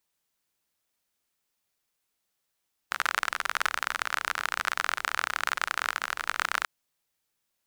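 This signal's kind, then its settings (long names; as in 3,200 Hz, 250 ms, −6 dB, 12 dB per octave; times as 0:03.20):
rain-like ticks over hiss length 3.74 s, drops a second 40, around 1,400 Hz, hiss −26 dB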